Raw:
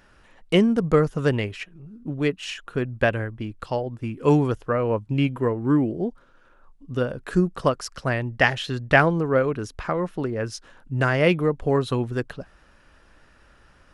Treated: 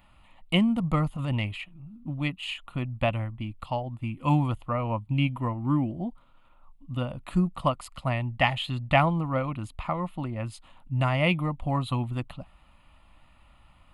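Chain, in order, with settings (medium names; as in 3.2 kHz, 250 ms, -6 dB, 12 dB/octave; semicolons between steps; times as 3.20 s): static phaser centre 1.6 kHz, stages 6; 1.13–1.72 s: transient shaper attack -11 dB, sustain +2 dB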